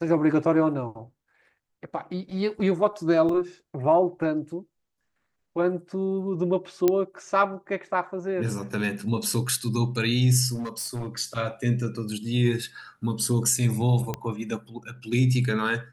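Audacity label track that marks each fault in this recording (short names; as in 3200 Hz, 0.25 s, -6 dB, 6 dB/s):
3.290000	3.290000	gap 3.3 ms
6.880000	6.880000	pop -8 dBFS
10.540000	11.090000	clipped -27.5 dBFS
14.140000	14.140000	pop -14 dBFS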